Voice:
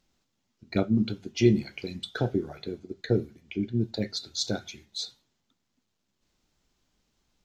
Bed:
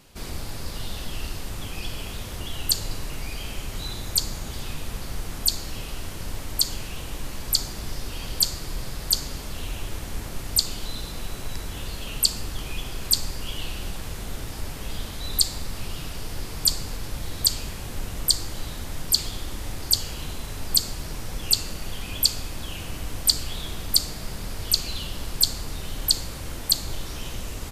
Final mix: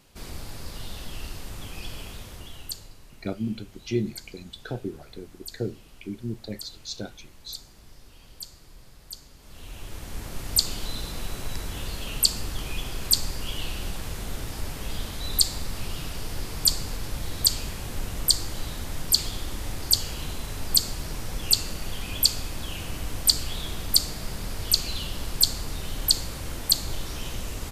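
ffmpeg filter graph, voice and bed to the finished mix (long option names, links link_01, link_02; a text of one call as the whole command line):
ffmpeg -i stem1.wav -i stem2.wav -filter_complex "[0:a]adelay=2500,volume=-5.5dB[link_01];[1:a]volume=13.5dB,afade=type=out:start_time=1.98:duration=0.96:silence=0.211349,afade=type=in:start_time=9.38:duration=1.25:silence=0.125893[link_02];[link_01][link_02]amix=inputs=2:normalize=0" out.wav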